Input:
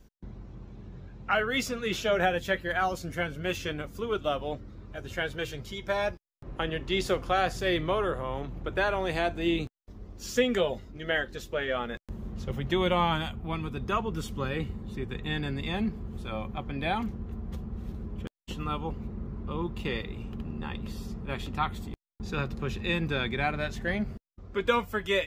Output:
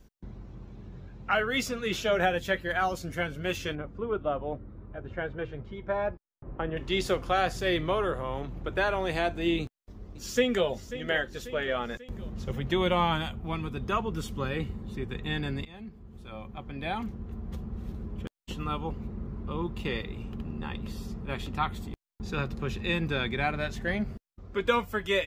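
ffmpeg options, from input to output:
ffmpeg -i in.wav -filter_complex "[0:a]asettb=1/sr,asplit=3[link_01][link_02][link_03];[link_01]atrim=end=3.754[link_04];[link_02]atrim=start=3.75:end=6.77,asetpts=PTS-STARTPTS,afade=type=in:duration=0.004:curve=qsin,afade=type=out:start_time=3.016:duration=0.004:curve=qsin,lowpass=1400[link_05];[link_03]atrim=start=6.766[link_06];[link_04][link_05]acrossfade=duration=0.004:curve1=hsin:curve2=qsin[link_07];[link_07][link_06]acrossfade=duration=0.004:curve1=qsin:curve2=hsin,asplit=2[link_08][link_09];[link_09]afade=type=in:start_time=9.61:duration=0.01,afade=type=out:start_time=10.67:duration=0.01,aecho=0:1:540|1080|1620|2160|2700|3240:0.211349|0.116242|0.063933|0.0351632|0.0193397|0.0106369[link_10];[link_08][link_10]amix=inputs=2:normalize=0,asplit=2[link_11][link_12];[link_11]atrim=end=15.65,asetpts=PTS-STARTPTS,afade=type=out:start_time=15.646:duration=0.004:curve=hsin:silence=0.11885[link_13];[link_12]atrim=start=15.65,asetpts=PTS-STARTPTS,afade=type=in:duration=1.98:silence=0.11885[link_14];[link_13][link_14]concat=n=2:v=0:a=1" out.wav

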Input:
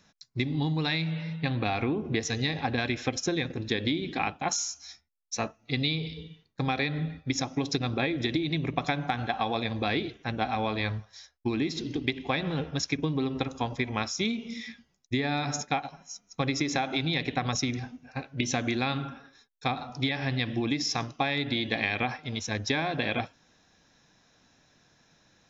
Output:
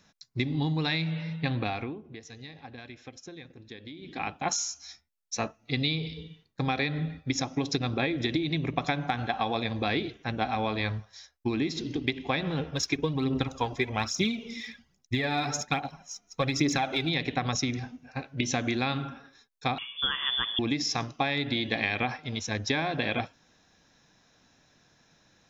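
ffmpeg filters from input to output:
ffmpeg -i in.wav -filter_complex "[0:a]asplit=3[link_01][link_02][link_03];[link_01]afade=type=out:start_time=12.73:duration=0.02[link_04];[link_02]aphaser=in_gain=1:out_gain=1:delay=3:decay=0.5:speed=1.2:type=triangular,afade=type=in:start_time=12.73:duration=0.02,afade=type=out:start_time=17.08:duration=0.02[link_05];[link_03]afade=type=in:start_time=17.08:duration=0.02[link_06];[link_04][link_05][link_06]amix=inputs=3:normalize=0,asettb=1/sr,asplit=3[link_07][link_08][link_09];[link_07]atrim=end=19.784[link_10];[link_08]atrim=start=19.78:end=20.59,asetpts=PTS-STARTPTS,afade=type=in:duration=0.004:curve=qsin,afade=type=out:start_time=0.806:duration=0.004:curve=qsin,lowpass=frequency=3100:width_type=q:width=0.5098,lowpass=frequency=3100:width_type=q:width=0.6013,lowpass=frequency=3100:width_type=q:width=0.9,lowpass=frequency=3100:width_type=q:width=2.563,afreqshift=-3600[link_11];[link_09]atrim=start=20.586[link_12];[link_10][link_11]acrossfade=duration=0.004:curve1=hsin:curve2=qsin[link_13];[link_13][link_12]acrossfade=duration=0.004:curve1=qsin:curve2=hsin,asplit=3[link_14][link_15][link_16];[link_14]atrim=end=2.03,asetpts=PTS-STARTPTS,afade=type=out:start_time=1.54:duration=0.49:silence=0.158489[link_17];[link_15]atrim=start=2.03:end=3.96,asetpts=PTS-STARTPTS,volume=-16dB[link_18];[link_16]atrim=start=3.96,asetpts=PTS-STARTPTS,afade=type=in:duration=0.49:silence=0.158489[link_19];[link_17][link_18][link_19]concat=n=3:v=0:a=1" out.wav

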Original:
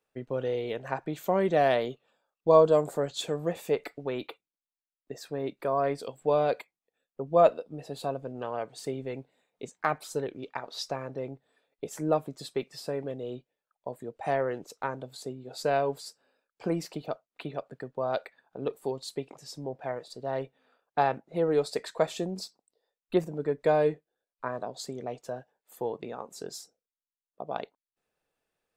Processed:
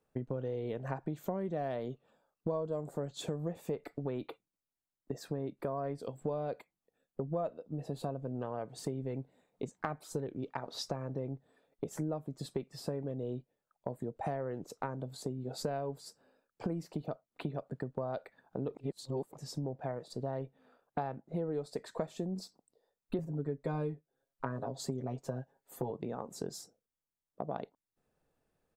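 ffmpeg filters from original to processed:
ffmpeg -i in.wav -filter_complex "[0:a]asettb=1/sr,asplit=3[link_01][link_02][link_03];[link_01]atrim=end=23.184[link_04];[link_02]atrim=start=23.18:end=25.91,asetpts=PTS-STARTPTS,afade=type=in:duration=0.004:curve=qsin,afade=type=out:start_time=2.726:duration=0.004:curve=qsin,aecho=1:1:7.4:0.86,atrim=end_sample=120393[link_05];[link_03]atrim=start=25.906[link_06];[link_04][link_05]acrossfade=duration=0.004:curve1=hsin:curve2=qsin[link_07];[link_07][link_06]acrossfade=duration=0.004:curve1=qsin:curve2=hsin,asplit=3[link_08][link_09][link_10];[link_08]atrim=end=18.752[link_11];[link_09]atrim=start=18.748:end=19.332,asetpts=PTS-STARTPTS,areverse[link_12];[link_10]atrim=start=19.328[link_13];[link_11][link_12]acrossfade=duration=0.004:curve1=hsin:curve2=hsin[link_14];[link_14][link_13]acrossfade=duration=0.004:curve1=hsin:curve2=hsin,firequalizer=gain_entry='entry(140,0);entry(410,-7);entry(2500,-16);entry(6900,-13)':delay=0.05:min_phase=1,acompressor=threshold=-45dB:ratio=6,volume=11dB" out.wav

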